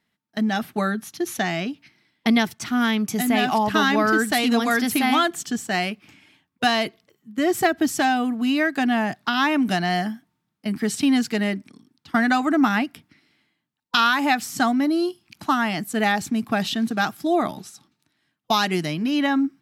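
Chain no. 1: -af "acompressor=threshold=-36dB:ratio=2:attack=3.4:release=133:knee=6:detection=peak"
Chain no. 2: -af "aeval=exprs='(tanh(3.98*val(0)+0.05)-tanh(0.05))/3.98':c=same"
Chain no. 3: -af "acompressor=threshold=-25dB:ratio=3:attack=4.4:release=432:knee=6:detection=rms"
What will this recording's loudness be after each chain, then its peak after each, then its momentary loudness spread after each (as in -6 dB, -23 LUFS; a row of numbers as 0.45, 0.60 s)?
-32.5, -23.5, -29.5 LUFS; -13.5, -12.0, -10.5 dBFS; 9, 9, 7 LU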